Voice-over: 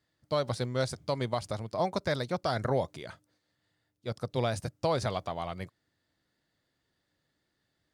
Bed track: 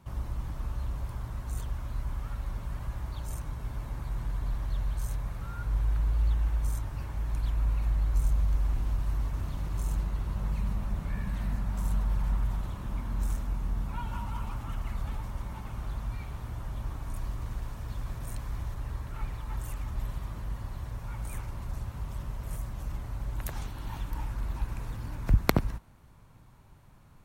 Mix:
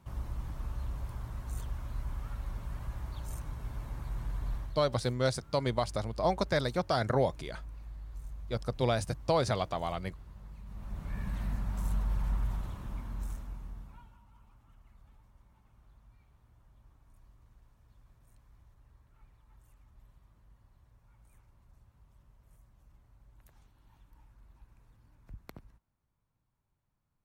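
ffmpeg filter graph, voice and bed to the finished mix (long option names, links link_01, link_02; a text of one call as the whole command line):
ffmpeg -i stem1.wav -i stem2.wav -filter_complex "[0:a]adelay=4450,volume=1dB[link_01];[1:a]volume=11dB,afade=type=out:start_time=4.55:duration=0.25:silence=0.199526,afade=type=in:start_time=10.66:duration=0.6:silence=0.188365,afade=type=out:start_time=12.5:duration=1.66:silence=0.0749894[link_02];[link_01][link_02]amix=inputs=2:normalize=0" out.wav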